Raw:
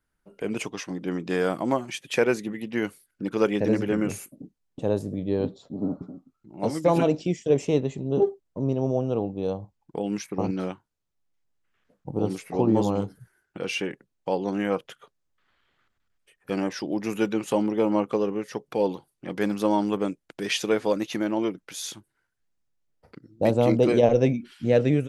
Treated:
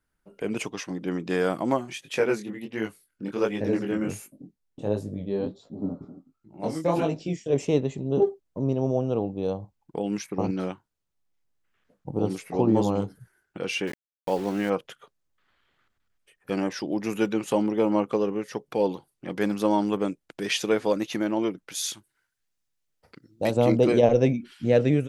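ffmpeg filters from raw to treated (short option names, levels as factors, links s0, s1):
-filter_complex "[0:a]asplit=3[s0][s1][s2];[s0]afade=t=out:st=1.82:d=0.02[s3];[s1]flanger=delay=18:depth=7.2:speed=1.4,afade=t=in:st=1.82:d=0.02,afade=t=out:st=7.52:d=0.02[s4];[s2]afade=t=in:st=7.52:d=0.02[s5];[s3][s4][s5]amix=inputs=3:normalize=0,asettb=1/sr,asplit=3[s6][s7][s8];[s6]atrim=end=13.874[s9];[s7]atrim=start=13.87:end=14.7,asetpts=PTS-STARTPTS,afade=t=in:d=0.004:c=qsin,afade=t=out:st=0.826:d=0.004:c=qsin,aeval=exprs='val(0)*gte(abs(val(0)),0.0133)':c=same[s10];[s8]atrim=start=14.696[s11];[s9][s10]acrossfade=d=0.004:c1=hsin:c2=qsin[s12];[s12][s11]acrossfade=d=0.004:c1=qsin:c2=hsin,asettb=1/sr,asplit=3[s13][s14][s15];[s13]atrim=end=21.754[s16];[s14]atrim=start=21.75:end=23.57,asetpts=PTS-STARTPTS,afade=t=in:d=0.004:c=qsin,afade=t=out:st=1.816:d=0.004:c=qsin,tiltshelf=f=1400:g=-5[s17];[s15]atrim=start=23.566[s18];[s16][s17]acrossfade=d=0.004:c1=hsin:c2=qsin[s19];[s19][s18]acrossfade=d=0.004:c1=qsin:c2=hsin"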